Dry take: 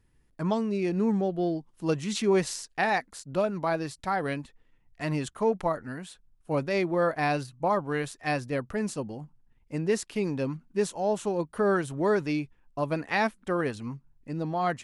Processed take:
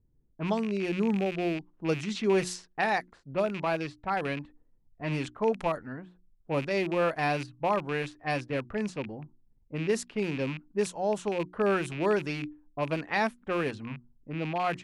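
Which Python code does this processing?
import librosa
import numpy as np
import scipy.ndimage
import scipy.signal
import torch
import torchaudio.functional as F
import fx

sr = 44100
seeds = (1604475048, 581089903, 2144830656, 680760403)

y = fx.rattle_buzz(x, sr, strikes_db=-37.0, level_db=-27.0)
y = fx.env_lowpass(y, sr, base_hz=420.0, full_db=-23.0)
y = fx.hum_notches(y, sr, base_hz=60, count=6)
y = y * librosa.db_to_amplitude(-1.5)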